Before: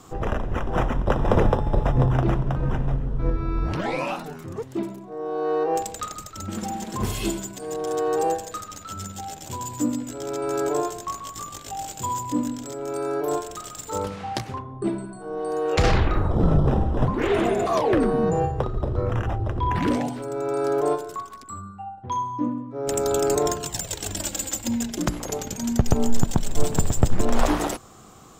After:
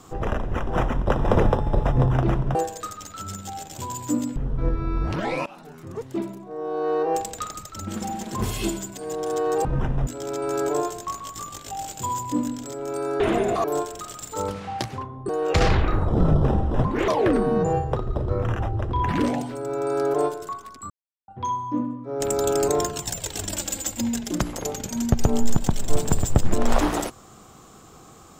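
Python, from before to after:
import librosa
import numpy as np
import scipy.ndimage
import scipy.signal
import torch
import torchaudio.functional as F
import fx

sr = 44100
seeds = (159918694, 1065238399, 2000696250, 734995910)

y = fx.edit(x, sr, fx.swap(start_s=2.55, length_s=0.42, other_s=8.26, other_length_s=1.81),
    fx.fade_in_from(start_s=4.07, length_s=0.59, floor_db=-21.5),
    fx.cut(start_s=14.85, length_s=0.67),
    fx.move(start_s=17.31, length_s=0.44, to_s=13.2),
    fx.silence(start_s=21.57, length_s=0.38), tone=tone)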